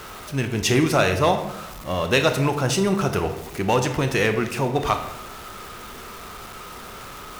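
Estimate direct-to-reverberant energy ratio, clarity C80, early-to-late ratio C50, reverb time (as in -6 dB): 6.5 dB, 11.5 dB, 9.0 dB, 0.90 s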